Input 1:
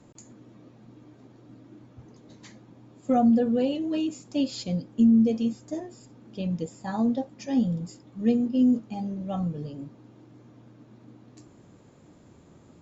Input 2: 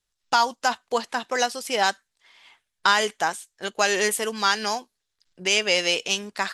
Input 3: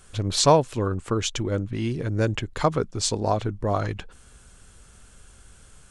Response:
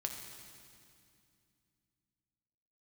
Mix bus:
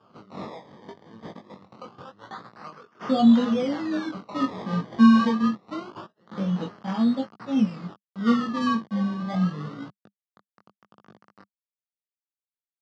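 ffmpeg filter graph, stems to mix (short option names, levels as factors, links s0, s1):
-filter_complex "[0:a]acrusher=bits=6:mix=0:aa=0.000001,volume=1.12,asplit=2[s0][s1];[1:a]highpass=f=460:w=0.5412,highpass=f=460:w=1.3066,adelay=500,volume=0.531[s2];[2:a]aderivative,flanger=delay=19.5:depth=6.6:speed=1.3,asoftclip=type=tanh:threshold=0.0355,volume=1.33,asplit=2[s3][s4];[s4]volume=0.188[s5];[s1]apad=whole_len=310368[s6];[s2][s6]sidechaingate=range=0.02:threshold=0.00224:ratio=16:detection=peak[s7];[s7][s3]amix=inputs=2:normalize=0,asoftclip=type=tanh:threshold=0.0422,acompressor=threshold=0.0178:ratio=6,volume=1[s8];[3:a]atrim=start_sample=2205[s9];[s5][s9]afir=irnorm=-1:irlink=0[s10];[s0][s8][s10]amix=inputs=3:normalize=0,acrusher=samples=22:mix=1:aa=0.000001:lfo=1:lforange=22:lforate=0.25,flanger=delay=17.5:depth=5.4:speed=0.81,highpass=f=110:w=0.5412,highpass=f=110:w=1.3066,equalizer=f=200:t=q:w=4:g=10,equalizer=f=1200:t=q:w=4:g=9,equalizer=f=2400:t=q:w=4:g=-9,lowpass=f=4800:w=0.5412,lowpass=f=4800:w=1.3066"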